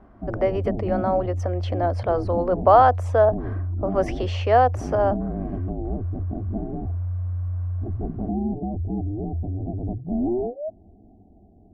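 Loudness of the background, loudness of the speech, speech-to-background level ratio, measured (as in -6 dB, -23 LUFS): -29.0 LUFS, -22.0 LUFS, 7.0 dB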